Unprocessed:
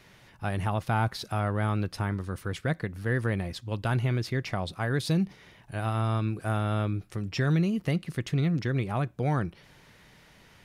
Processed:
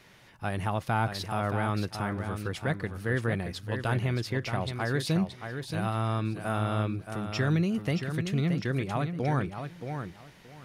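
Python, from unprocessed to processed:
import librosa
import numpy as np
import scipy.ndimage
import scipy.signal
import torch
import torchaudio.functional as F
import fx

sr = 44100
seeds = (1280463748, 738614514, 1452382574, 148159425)

y = fx.low_shelf(x, sr, hz=120.0, db=-5.0)
y = fx.echo_feedback(y, sr, ms=625, feedback_pct=19, wet_db=-7.5)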